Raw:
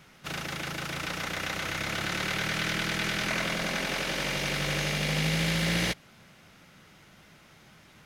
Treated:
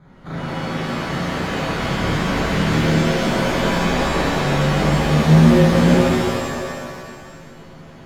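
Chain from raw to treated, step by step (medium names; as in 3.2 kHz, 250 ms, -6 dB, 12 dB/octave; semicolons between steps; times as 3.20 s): boxcar filter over 16 samples; bass shelf 380 Hz +6 dB; pitch-shifted reverb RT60 1.9 s, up +7 st, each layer -2 dB, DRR -8.5 dB; trim +1 dB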